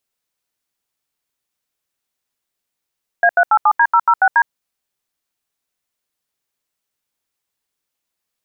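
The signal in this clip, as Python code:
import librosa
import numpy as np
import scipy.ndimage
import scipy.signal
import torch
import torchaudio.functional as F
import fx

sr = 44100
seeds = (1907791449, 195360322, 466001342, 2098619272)

y = fx.dtmf(sr, digits='A387D006D', tone_ms=62, gap_ms=79, level_db=-11.0)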